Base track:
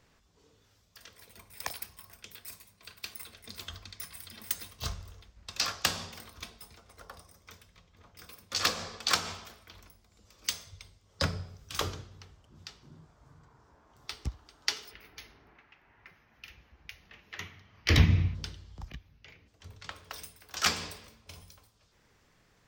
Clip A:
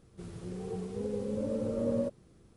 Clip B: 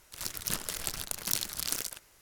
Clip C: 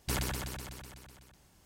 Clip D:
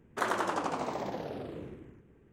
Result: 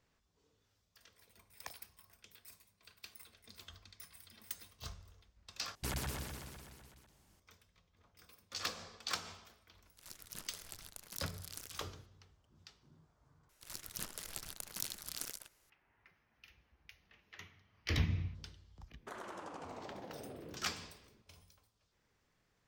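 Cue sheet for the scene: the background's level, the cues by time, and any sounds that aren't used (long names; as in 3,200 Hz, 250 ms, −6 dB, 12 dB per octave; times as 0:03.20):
base track −11.5 dB
0:05.75: overwrite with C −6.5 dB + delay with pitch and tempo change per echo 134 ms, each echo +2 semitones, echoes 2, each echo −6 dB
0:09.85: mix in B −16 dB
0:13.49: overwrite with B −10.5 dB
0:18.90: mix in D −8 dB + downward compressor 5 to 1, threshold −36 dBFS
not used: A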